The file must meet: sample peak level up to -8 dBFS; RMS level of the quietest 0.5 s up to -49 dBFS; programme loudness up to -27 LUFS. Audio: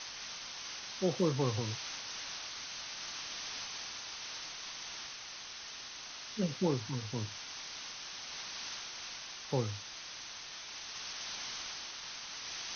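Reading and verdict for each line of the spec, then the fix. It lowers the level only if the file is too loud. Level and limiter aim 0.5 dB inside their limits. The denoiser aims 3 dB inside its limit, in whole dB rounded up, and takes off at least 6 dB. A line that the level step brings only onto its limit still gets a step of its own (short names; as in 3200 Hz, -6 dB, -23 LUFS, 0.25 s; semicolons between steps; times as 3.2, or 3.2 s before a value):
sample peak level -18.0 dBFS: OK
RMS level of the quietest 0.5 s -47 dBFS: fail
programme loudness -39.0 LUFS: OK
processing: denoiser 6 dB, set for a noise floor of -47 dBFS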